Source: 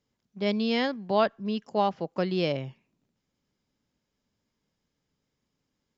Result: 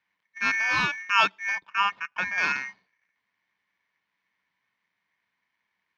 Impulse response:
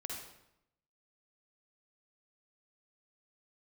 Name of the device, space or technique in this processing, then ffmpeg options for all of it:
ring modulator pedal into a guitar cabinet: -filter_complex "[0:a]aeval=exprs='val(0)*sgn(sin(2*PI*2000*n/s))':c=same,highpass=80,equalizer=f=190:t=q:w=4:g=10,equalizer=f=370:t=q:w=4:g=-3,equalizer=f=990:t=q:w=4:g=10,lowpass=f=4.3k:w=0.5412,lowpass=f=4.3k:w=1.3066,asettb=1/sr,asplit=3[a][b][c];[a]atrim=end=1.554[d];[b]atrim=start=1.55:end=2.38,asetpts=PTS-STARTPTS,afade=t=in:d=0.004:c=qsin,afade=t=out:st=0.826:d=0.004:c=qsin,highshelf=f=2.7k:g=-9.5[e];[c]atrim=start=2.376[f];[d][e]acrossfade=d=0.004:c1=hsin:c2=qsin[g];[g][f]acrossfade=d=0.004:c1=qsin:c2=hsin,volume=1.5dB"

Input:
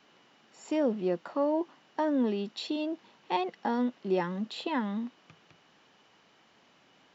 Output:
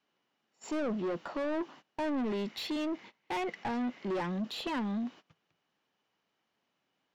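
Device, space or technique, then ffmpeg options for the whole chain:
saturation between pre-emphasis and de-emphasis: -filter_complex "[0:a]agate=range=-22dB:threshold=-51dB:ratio=16:detection=peak,asettb=1/sr,asplit=3[a][b][c];[a]atrim=end=2.044[d];[b]atrim=start=2.04:end=4.14,asetpts=PTS-STARTPTS,afade=t=in:d=0.004:c=qsin,afade=t=out:st=2.096:d=0.004:c=qsin,equalizer=f=2.1k:t=o:w=0.29:g=12[e];[c]atrim=start=4.136[f];[d][e]acrossfade=d=0.004:c1=hsin:c2=qsin[g];[g][f]acrossfade=d=0.004:c1=qsin:c2=hsin,highshelf=f=3.2k:g=9,asoftclip=type=tanh:threshold=-34dB,highshelf=f=3.2k:g=-9,volume=4dB"

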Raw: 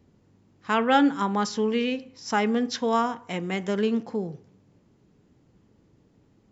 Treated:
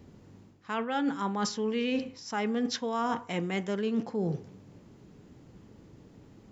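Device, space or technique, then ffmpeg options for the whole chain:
compression on the reversed sound: -af "areverse,acompressor=threshold=-34dB:ratio=16,areverse,volume=7.5dB"

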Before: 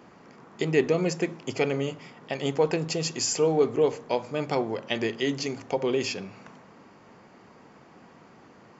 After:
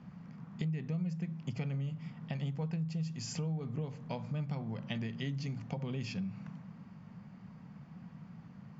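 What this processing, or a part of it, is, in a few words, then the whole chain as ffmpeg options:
jukebox: -af "lowpass=5.4k,lowshelf=f=250:t=q:w=3:g=12.5,acompressor=threshold=-25dB:ratio=6,volume=-9dB"

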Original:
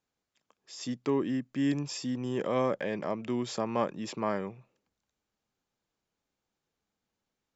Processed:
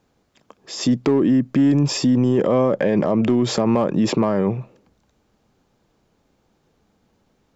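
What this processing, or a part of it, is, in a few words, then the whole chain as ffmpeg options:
mastering chain: -af "equalizer=f=4.4k:t=o:w=1.9:g=3.5,acompressor=threshold=-30dB:ratio=2.5,asoftclip=type=tanh:threshold=-22dB,tiltshelf=f=1.3k:g=7.5,asoftclip=type=hard:threshold=-20dB,alimiter=level_in=26.5dB:limit=-1dB:release=50:level=0:latency=1,volume=-9dB"

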